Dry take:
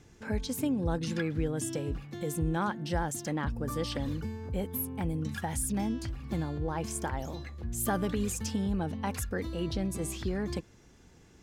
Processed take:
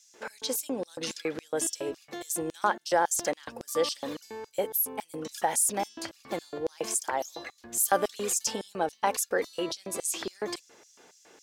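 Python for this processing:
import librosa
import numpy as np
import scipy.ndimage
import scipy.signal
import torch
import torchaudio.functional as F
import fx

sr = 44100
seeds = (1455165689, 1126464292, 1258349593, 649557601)

y = fx.filter_lfo_highpass(x, sr, shape='square', hz=3.6, low_hz=530.0, high_hz=5600.0, q=1.5)
y = y * librosa.db_to_amplitude(7.0)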